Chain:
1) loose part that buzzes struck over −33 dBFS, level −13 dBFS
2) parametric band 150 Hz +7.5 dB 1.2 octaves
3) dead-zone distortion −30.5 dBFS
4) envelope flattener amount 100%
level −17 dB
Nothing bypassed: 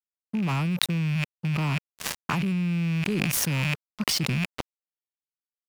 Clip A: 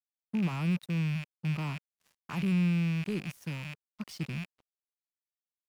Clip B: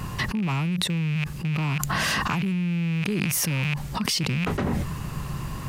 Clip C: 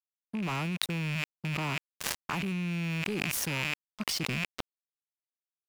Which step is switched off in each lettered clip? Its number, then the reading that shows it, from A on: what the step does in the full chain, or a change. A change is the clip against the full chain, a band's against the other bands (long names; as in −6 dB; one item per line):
4, change in crest factor −14.5 dB
3, distortion level −22 dB
2, 125 Hz band −4.5 dB